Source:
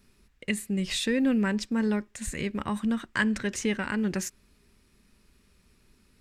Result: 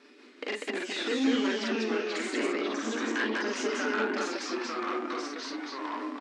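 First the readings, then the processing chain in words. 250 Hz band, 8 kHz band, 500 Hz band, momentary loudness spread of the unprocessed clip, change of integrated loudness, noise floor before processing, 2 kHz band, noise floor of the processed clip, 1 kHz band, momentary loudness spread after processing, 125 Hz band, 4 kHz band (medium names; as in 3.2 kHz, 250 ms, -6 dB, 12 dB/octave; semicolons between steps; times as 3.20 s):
-4.0 dB, -4.5 dB, +3.5 dB, 8 LU, -2.5 dB, -65 dBFS, +1.0 dB, -54 dBFS, +5.0 dB, 8 LU, under -15 dB, +1.5 dB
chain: comb 6.8 ms, depth 44%; compression 12:1, threshold -39 dBFS, peak gain reduction 20 dB; rotary cabinet horn 1.2 Hz, later 5.5 Hz, at 3.07 s; vibrato 8.2 Hz 5.1 cents; sine folder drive 13 dB, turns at -23.5 dBFS; loudspeakers at several distances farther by 14 m -1 dB, 67 m -1 dB; ever faster or slower copies 181 ms, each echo -3 st, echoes 3; brick-wall FIR band-pass 230–12000 Hz; distance through air 160 m; trim -2 dB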